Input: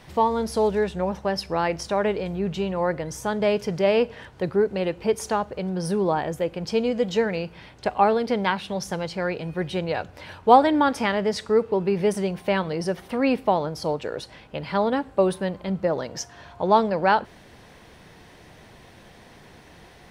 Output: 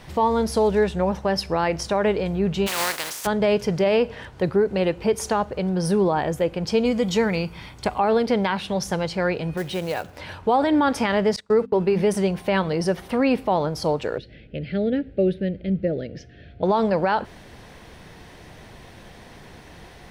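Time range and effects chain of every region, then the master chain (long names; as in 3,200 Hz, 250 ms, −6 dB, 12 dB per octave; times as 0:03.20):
0:02.66–0:03.25: compressing power law on the bin magnitudes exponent 0.32 + high-pass filter 730 Hz 6 dB per octave
0:06.85–0:07.99: high-shelf EQ 8,300 Hz +10.5 dB + comb filter 0.9 ms, depth 32%
0:09.57–0:10.17: low-shelf EQ 100 Hz −11 dB + downward compressor 1.5 to 1, threshold −31 dBFS + floating-point word with a short mantissa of 2 bits
0:11.36–0:12.03: noise gate −31 dBFS, range −26 dB + mains-hum notches 50/100/150/200/250/300 Hz
0:14.18–0:16.63: Butterworth band-reject 1,000 Hz, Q 0.68 + high-frequency loss of the air 370 metres
whole clip: low-shelf EQ 71 Hz +6 dB; brickwall limiter −15 dBFS; level +3.5 dB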